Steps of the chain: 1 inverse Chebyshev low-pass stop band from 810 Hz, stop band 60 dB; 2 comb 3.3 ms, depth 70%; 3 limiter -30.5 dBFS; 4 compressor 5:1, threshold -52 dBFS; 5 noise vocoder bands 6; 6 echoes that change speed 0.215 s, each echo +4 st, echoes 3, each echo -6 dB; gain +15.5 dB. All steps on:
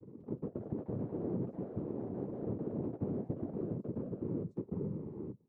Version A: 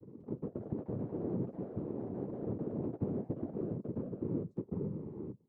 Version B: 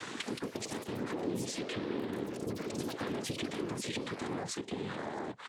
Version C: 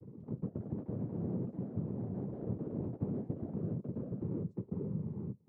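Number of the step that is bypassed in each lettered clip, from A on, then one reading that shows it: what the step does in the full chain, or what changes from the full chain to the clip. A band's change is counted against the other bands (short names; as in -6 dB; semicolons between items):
3, crest factor change +1.5 dB; 1, 1 kHz band +11.5 dB; 2, 125 Hz band +6.0 dB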